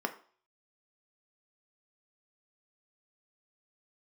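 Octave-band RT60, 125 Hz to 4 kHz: 0.30, 0.40, 0.45, 0.45, 0.40, 0.45 seconds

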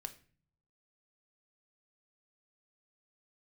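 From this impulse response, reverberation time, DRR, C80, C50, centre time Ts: 0.45 s, 7.5 dB, 20.0 dB, 15.0 dB, 6 ms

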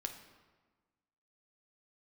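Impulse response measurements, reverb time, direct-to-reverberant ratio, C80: 1.4 s, 4.5 dB, 10.5 dB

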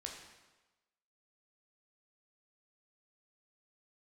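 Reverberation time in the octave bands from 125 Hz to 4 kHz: 1.0, 1.0, 1.1, 1.2, 1.1, 1.0 seconds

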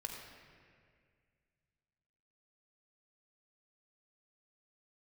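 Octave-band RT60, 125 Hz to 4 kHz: 2.9, 2.4, 2.2, 1.8, 2.1, 1.5 seconds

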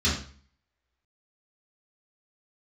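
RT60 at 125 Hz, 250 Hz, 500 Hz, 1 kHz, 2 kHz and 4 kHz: 0.55, 0.55, 0.45, 0.45, 0.45, 0.40 seconds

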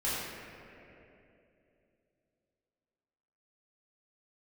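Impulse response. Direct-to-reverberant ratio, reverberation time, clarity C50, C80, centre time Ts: −10.5 dB, 2.9 s, −2.5 dB, −1.0 dB, 155 ms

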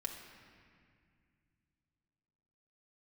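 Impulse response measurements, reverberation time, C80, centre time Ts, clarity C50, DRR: 2.1 s, 6.0 dB, 53 ms, 5.0 dB, 0.5 dB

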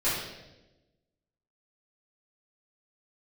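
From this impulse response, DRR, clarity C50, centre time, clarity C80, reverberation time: −13.0 dB, 0.5 dB, 67 ms, 4.0 dB, 1.0 s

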